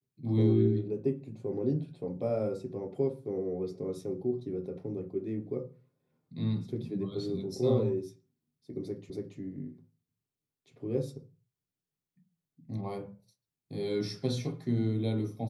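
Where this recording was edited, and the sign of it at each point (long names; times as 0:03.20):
0:09.10: the same again, the last 0.28 s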